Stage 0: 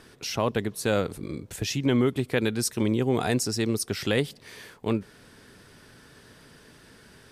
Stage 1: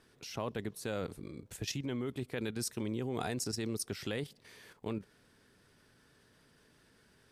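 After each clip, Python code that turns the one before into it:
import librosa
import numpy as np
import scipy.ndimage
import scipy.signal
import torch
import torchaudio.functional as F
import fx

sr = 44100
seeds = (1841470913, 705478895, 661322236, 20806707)

y = fx.level_steps(x, sr, step_db=10)
y = y * 10.0 ** (-6.0 / 20.0)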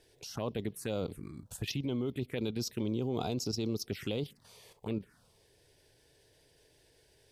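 y = fx.env_phaser(x, sr, low_hz=200.0, high_hz=1800.0, full_db=-33.0)
y = y * 10.0 ** (3.5 / 20.0)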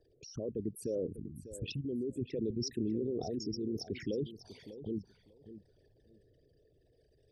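y = fx.envelope_sharpen(x, sr, power=3.0)
y = fx.rotary(y, sr, hz=0.65)
y = fx.echo_feedback(y, sr, ms=597, feedback_pct=18, wet_db=-13.5)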